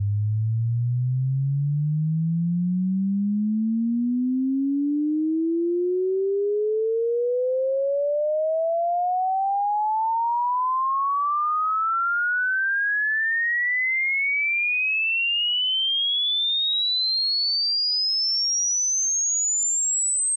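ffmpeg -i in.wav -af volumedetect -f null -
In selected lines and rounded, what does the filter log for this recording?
mean_volume: -23.0 dB
max_volume: -19.9 dB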